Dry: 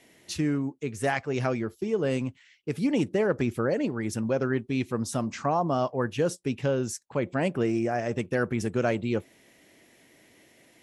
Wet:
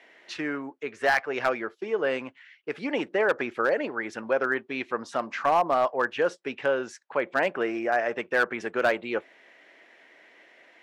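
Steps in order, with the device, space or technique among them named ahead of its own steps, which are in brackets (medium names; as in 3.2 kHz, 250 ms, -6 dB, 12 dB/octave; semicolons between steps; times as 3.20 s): megaphone (band-pass 570–2700 Hz; peaking EQ 1.6 kHz +4.5 dB 0.59 oct; hard clipper -21 dBFS, distortion -19 dB); trim +6 dB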